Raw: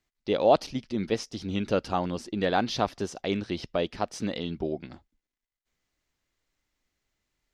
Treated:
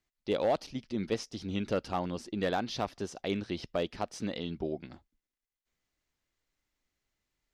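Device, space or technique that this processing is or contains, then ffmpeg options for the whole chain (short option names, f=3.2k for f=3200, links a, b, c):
limiter into clipper: -af "alimiter=limit=-13.5dB:level=0:latency=1:release=413,asoftclip=type=hard:threshold=-17dB,volume=-4dB"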